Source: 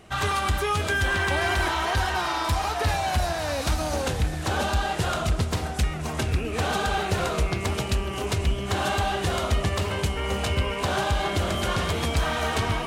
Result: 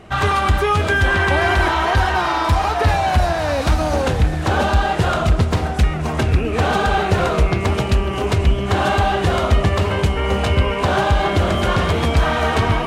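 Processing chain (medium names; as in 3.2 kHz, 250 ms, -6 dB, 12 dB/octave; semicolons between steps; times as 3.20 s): treble shelf 4 kHz -12 dB; trim +9 dB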